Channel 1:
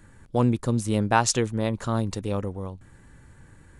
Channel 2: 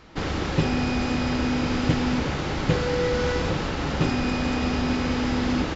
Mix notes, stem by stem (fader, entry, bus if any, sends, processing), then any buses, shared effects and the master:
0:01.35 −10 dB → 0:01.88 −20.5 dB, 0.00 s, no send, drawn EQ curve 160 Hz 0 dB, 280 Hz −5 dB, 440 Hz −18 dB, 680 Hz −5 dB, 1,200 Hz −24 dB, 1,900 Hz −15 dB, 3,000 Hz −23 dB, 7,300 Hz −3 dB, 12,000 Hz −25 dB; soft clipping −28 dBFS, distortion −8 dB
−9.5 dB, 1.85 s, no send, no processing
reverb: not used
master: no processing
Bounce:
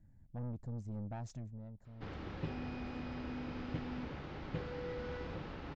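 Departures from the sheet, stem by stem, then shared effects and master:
stem 2 −9.5 dB → −18.0 dB
master: extra high-frequency loss of the air 200 metres

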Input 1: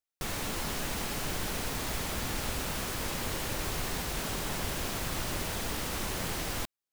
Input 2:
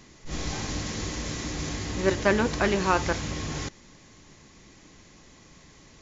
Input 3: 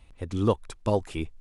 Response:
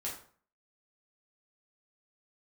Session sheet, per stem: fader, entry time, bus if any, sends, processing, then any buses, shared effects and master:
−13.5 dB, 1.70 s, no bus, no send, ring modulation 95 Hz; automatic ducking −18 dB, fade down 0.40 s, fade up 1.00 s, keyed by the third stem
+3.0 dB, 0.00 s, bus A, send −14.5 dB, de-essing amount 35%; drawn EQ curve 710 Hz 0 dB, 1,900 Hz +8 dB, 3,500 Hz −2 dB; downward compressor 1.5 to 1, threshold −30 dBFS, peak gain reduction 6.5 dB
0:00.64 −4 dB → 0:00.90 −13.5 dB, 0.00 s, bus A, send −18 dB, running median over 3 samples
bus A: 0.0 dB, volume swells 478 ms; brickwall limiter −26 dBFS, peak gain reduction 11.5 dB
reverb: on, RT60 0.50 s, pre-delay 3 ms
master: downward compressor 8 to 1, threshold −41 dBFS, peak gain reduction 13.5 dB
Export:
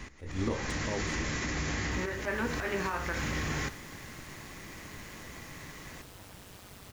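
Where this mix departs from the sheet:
stem 3 −4.0 dB → +5.5 dB
master: missing downward compressor 8 to 1, threshold −41 dBFS, peak gain reduction 13.5 dB

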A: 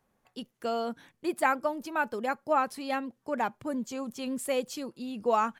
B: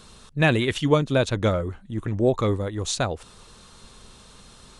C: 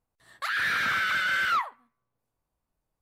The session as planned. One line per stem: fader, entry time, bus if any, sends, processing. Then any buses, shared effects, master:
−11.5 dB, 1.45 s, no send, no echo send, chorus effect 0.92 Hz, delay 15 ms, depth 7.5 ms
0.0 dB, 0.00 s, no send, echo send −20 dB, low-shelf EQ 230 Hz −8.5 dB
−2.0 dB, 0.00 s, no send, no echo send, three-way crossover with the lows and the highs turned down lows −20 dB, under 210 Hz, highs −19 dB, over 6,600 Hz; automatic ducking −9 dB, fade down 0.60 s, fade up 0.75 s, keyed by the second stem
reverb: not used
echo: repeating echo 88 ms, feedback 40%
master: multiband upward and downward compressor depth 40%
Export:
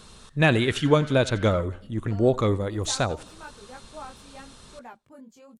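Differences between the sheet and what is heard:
stem B: missing low-shelf EQ 230 Hz −8.5 dB
stem C −2.0 dB → −8.5 dB
master: missing multiband upward and downward compressor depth 40%

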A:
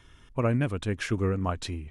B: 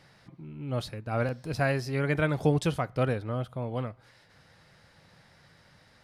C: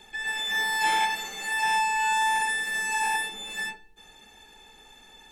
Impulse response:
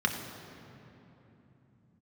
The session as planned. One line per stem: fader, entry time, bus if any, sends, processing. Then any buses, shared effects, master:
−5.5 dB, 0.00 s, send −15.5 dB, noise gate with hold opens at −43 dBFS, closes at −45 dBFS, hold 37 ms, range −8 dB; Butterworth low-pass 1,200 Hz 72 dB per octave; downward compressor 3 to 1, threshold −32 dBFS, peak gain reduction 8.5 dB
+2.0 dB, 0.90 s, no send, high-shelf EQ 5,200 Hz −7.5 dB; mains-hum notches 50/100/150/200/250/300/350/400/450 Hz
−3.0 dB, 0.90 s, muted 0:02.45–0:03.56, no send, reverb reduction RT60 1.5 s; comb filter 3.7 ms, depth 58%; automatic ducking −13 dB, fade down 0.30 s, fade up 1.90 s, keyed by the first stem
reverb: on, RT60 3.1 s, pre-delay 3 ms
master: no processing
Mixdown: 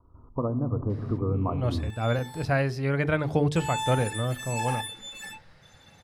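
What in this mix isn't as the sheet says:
stem A −5.5 dB → +4.0 dB
stem C: entry 0.90 s → 1.65 s
master: extra parametric band 89 Hz +4 dB 1 octave

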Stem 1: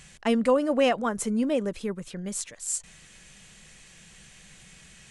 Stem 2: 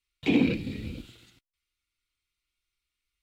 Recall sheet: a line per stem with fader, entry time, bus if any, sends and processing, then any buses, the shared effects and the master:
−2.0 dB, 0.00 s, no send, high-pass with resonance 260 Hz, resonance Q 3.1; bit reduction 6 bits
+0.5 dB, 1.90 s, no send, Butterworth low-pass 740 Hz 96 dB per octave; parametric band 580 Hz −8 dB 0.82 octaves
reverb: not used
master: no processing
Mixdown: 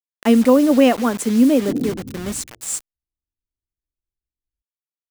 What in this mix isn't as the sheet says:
stem 1 −2.0 dB → +4.5 dB
stem 2: entry 1.90 s → 1.40 s

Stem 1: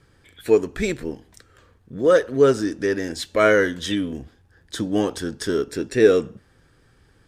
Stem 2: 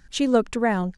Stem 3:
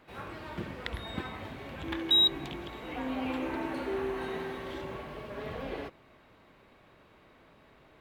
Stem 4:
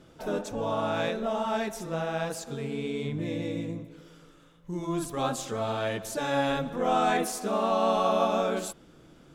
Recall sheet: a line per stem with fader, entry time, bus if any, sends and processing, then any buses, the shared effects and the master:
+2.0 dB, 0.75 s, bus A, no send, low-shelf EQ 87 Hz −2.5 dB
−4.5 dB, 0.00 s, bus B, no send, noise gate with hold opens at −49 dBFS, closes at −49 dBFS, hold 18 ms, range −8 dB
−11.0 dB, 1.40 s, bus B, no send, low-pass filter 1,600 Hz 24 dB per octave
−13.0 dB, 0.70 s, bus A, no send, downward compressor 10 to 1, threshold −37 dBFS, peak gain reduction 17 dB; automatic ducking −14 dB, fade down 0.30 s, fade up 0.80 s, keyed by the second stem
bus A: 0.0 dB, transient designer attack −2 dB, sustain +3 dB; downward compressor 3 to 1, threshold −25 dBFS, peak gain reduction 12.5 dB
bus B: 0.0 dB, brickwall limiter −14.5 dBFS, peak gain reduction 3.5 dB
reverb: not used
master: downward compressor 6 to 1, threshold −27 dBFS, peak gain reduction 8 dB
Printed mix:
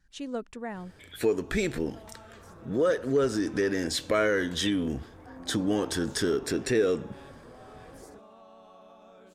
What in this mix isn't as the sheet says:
stem 2 −4.5 dB → −15.0 dB
stem 3: entry 1.40 s → 2.30 s
master: missing downward compressor 6 to 1, threshold −27 dBFS, peak gain reduction 8 dB

